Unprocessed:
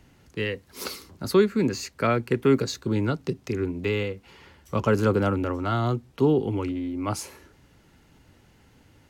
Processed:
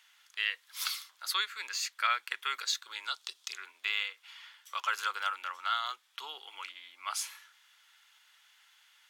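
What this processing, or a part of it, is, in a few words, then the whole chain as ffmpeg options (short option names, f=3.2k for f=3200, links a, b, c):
headphones lying on a table: -filter_complex "[0:a]asettb=1/sr,asplit=3[a][b][c];[a]atrim=end=3.054[d];[b]atrim=start=3.05:end=3.58,asetpts=PTS-STARTPTS,afade=t=in:d=0.004:c=qsin,afade=t=out:st=0.526:d=0.004:c=qsin,equalizer=f=125:t=o:w=1:g=-9,equalizer=f=2k:t=o:w=1:g=-7,equalizer=f=4k:t=o:w=1:g=6,equalizer=f=8k:t=o:w=1:g=5[e];[c]atrim=start=3.576[f];[d][e]acrossfade=d=0.004:c1=hsin:c2=qsin[g];[g][f]acrossfade=d=0.004:c1=qsin:c2=hsin,highpass=f=1.2k:w=0.5412,highpass=f=1.2k:w=1.3066,equalizer=f=3.4k:t=o:w=0.23:g=9.5"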